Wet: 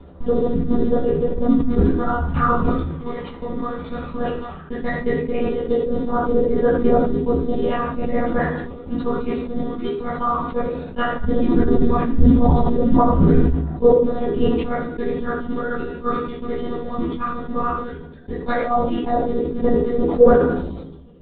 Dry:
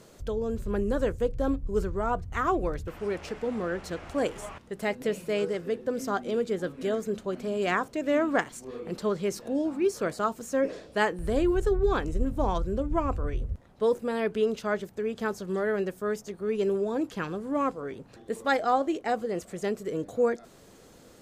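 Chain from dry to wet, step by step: reverb removal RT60 0.8 s; phaser 0.15 Hz, delay 1 ms, feedback 59%; low-pass that closes with the level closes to 2.3 kHz, closed at -19 dBFS; in parallel at -3 dB: bit crusher 6-bit; on the sum: tremolo 14 Hz, depth 79%; monotone LPC vocoder at 8 kHz 240 Hz; reverberation RT60 0.50 s, pre-delay 3 ms, DRR -7 dB; decay stretcher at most 45 dB/s; trim -7 dB

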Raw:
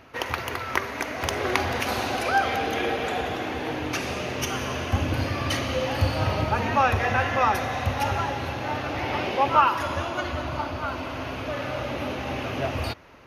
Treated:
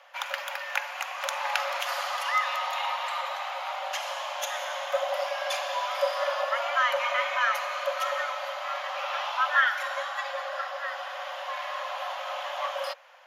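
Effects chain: frequency shift +470 Hz; trim -4 dB

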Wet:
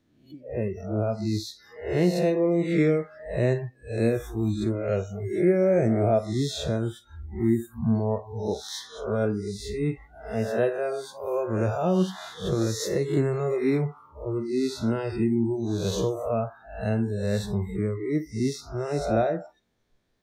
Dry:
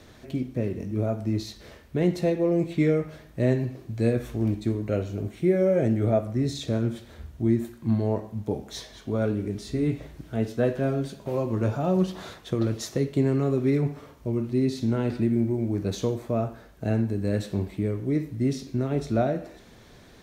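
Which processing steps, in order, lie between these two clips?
reverse spectral sustain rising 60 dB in 0.91 s; spectral noise reduction 26 dB

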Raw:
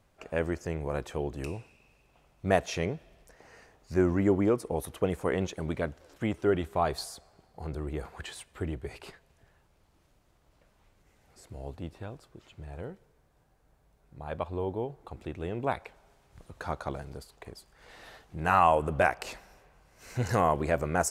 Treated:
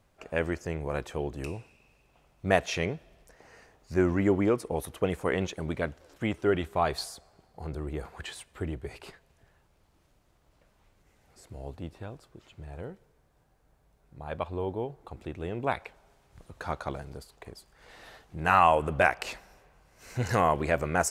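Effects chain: dynamic bell 2.5 kHz, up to +5 dB, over -43 dBFS, Q 0.74

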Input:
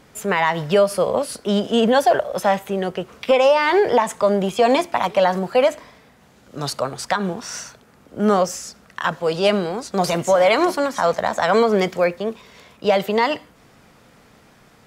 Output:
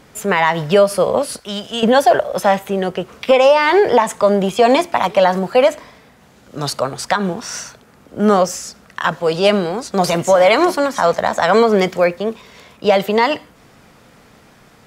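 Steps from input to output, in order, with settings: 1.39–1.83 s: peaking EQ 330 Hz -15 dB 2.6 oct; trim +4 dB

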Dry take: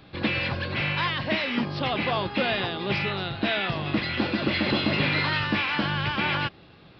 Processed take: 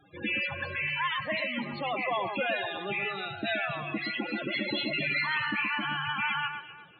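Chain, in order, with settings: bass shelf 370 Hz -12 dB; loudest bins only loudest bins 16; echo whose repeats swap between lows and highs 123 ms, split 1.9 kHz, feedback 52%, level -6.5 dB

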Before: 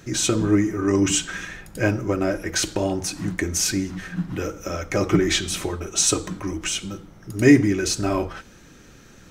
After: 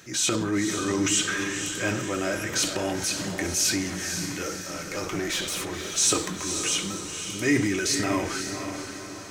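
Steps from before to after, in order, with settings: high-pass 130 Hz 6 dB/octave; tilt shelf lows -4.5 dB; transient shaper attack -5 dB, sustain +6 dB; in parallel at -1 dB: peak limiter -15.5 dBFS, peak gain reduction 11.5 dB; 4.56–5.85 s: on the sum: valve stage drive 14 dB, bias 0.75; on a send: echo that smears into a reverb 516 ms, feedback 49%, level -7 dB; on the sum: trim -7.5 dB

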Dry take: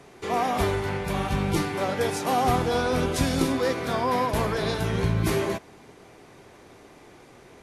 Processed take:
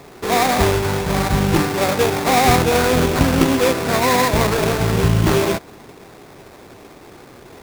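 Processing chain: sample-rate reducer 3 kHz, jitter 20%; trim +8.5 dB

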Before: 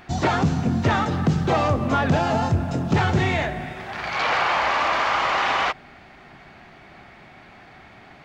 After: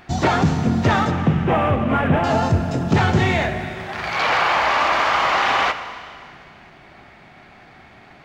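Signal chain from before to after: 1.11–2.24 s: CVSD coder 16 kbps; in parallel at -7 dB: crossover distortion -41 dBFS; on the sum: Schroeder reverb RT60 2.3 s, combs from 28 ms, DRR 10 dB

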